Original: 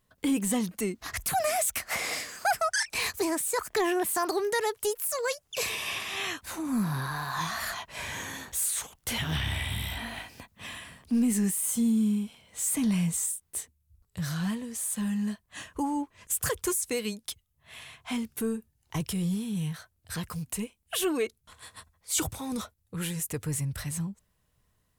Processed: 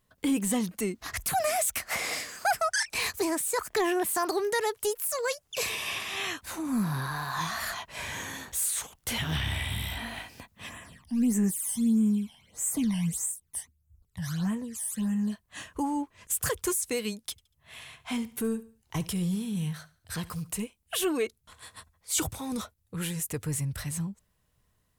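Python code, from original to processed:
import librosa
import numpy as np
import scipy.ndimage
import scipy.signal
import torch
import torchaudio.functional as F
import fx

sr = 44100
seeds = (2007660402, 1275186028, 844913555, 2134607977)

y = fx.phaser_stages(x, sr, stages=12, low_hz=400.0, high_hz=4700.0, hz=1.6, feedback_pct=25, at=(10.68, 15.31), fade=0.02)
y = fx.echo_feedback(y, sr, ms=71, feedback_pct=40, wet_db=-19.0, at=(17.31, 20.62))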